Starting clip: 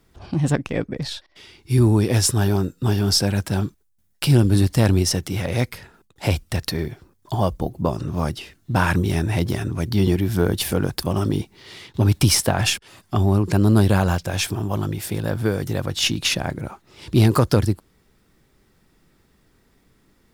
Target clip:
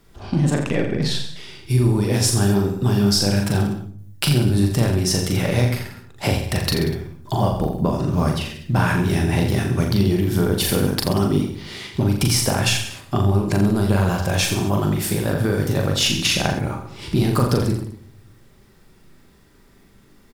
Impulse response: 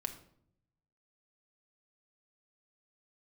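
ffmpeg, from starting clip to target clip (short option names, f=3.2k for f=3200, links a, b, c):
-filter_complex "[0:a]acompressor=threshold=-21dB:ratio=6,aecho=1:1:40|84|132.4|185.6|244.2:0.631|0.398|0.251|0.158|0.1,asplit=2[a][b];[1:a]atrim=start_sample=2205,asetrate=41454,aresample=44100[c];[b][c]afir=irnorm=-1:irlink=0,volume=0dB[d];[a][d]amix=inputs=2:normalize=0,volume=-1.5dB"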